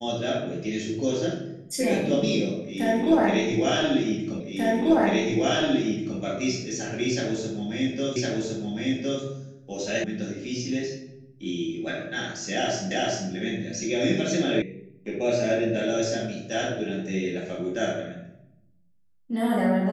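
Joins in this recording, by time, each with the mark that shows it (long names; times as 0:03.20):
0:04.40: the same again, the last 1.79 s
0:08.16: the same again, the last 1.06 s
0:10.04: cut off before it has died away
0:12.91: the same again, the last 0.39 s
0:14.62: cut off before it has died away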